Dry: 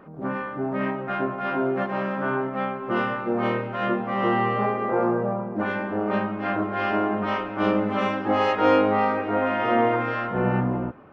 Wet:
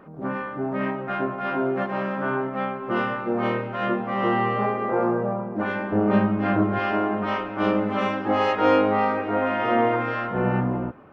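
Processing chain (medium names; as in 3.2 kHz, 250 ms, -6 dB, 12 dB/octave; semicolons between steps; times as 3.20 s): 5.92–6.79 s: bass shelf 290 Hz +11.5 dB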